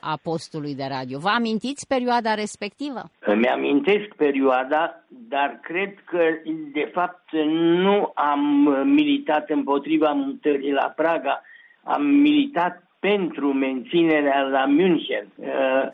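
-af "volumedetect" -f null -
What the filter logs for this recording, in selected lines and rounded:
mean_volume: -21.6 dB
max_volume: -7.5 dB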